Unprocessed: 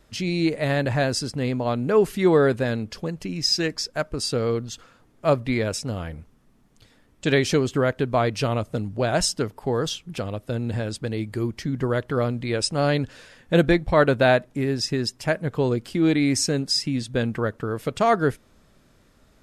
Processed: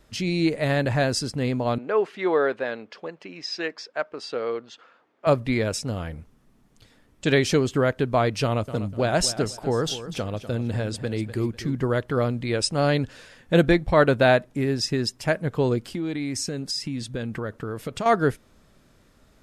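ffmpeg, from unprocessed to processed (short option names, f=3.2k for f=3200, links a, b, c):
-filter_complex "[0:a]asettb=1/sr,asplit=3[a][b][c];[a]atrim=end=1.784[d];[b]atrim=start=1.78:end=5.27,asetpts=PTS-STARTPTS,afade=t=in:d=0.004:c=qsin,afade=t=out:st=3.486:d=0.004:c=qsin,highpass=470,lowpass=2.9k[e];[c]atrim=start=5.266[f];[d][e]acrossfade=d=0.004:c1=hsin:c2=qsin[g];[g][f]acrossfade=d=0.004:c1=qsin:c2=hsin,asettb=1/sr,asplit=3[h][i][j];[h]atrim=end=8.434[k];[i]atrim=start=8.43:end=11.75,asetpts=PTS-STARTPTS,afade=t=in:d=0.004:c=qsin,afade=t=out:st=3.316:d=0.004:c=qsin,aecho=1:1:247|494|741:0.224|0.0672|0.0201,atrim=end_sample=146412[l];[j]atrim=start=11.746[m];[k][l]acrossfade=d=0.004:c1=hsin:c2=qsin[n];[n][m]acrossfade=d=0.004:c1=qsin:c2=hsin,asettb=1/sr,asplit=3[o][p][q];[o]atrim=end=15.814[r];[p]atrim=start=15.81:end=18.06,asetpts=PTS-STARTPTS,afade=t=in:d=0.004:c=qsin,afade=t=out:st=2.246:d=0.004:c=qsin,acompressor=threshold=-26dB:ratio=4:attack=3.2:release=140:knee=1:detection=peak[s];[q]atrim=start=18.056[t];[r][s]acrossfade=d=0.004:c1=hsin:c2=qsin[u];[u][t]acrossfade=d=0.004:c1=qsin:c2=hsin"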